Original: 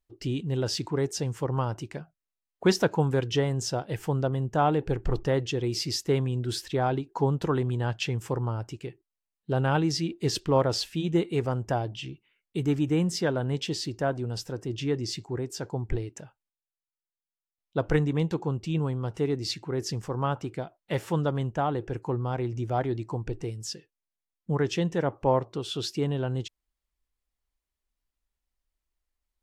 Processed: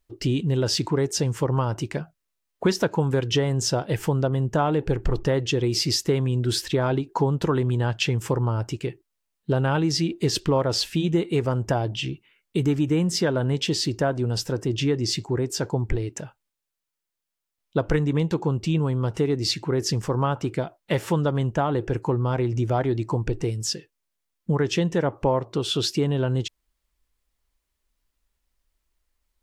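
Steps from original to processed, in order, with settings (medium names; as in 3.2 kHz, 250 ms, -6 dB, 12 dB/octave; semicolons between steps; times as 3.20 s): band-stop 760 Hz, Q 15; compression 3:1, threshold -29 dBFS, peak gain reduction 10 dB; trim +9 dB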